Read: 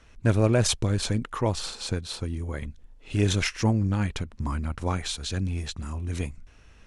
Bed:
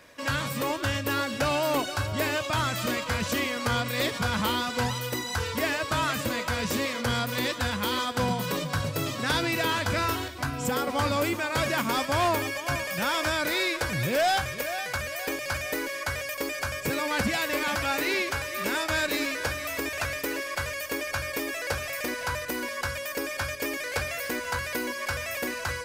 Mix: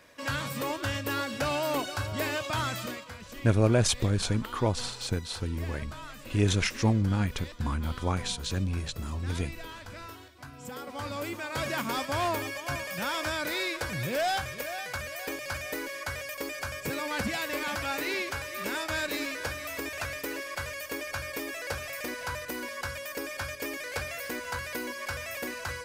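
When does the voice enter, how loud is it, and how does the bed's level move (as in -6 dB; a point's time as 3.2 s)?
3.20 s, -1.5 dB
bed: 2.73 s -3.5 dB
3.18 s -17 dB
10.28 s -17 dB
11.73 s -4.5 dB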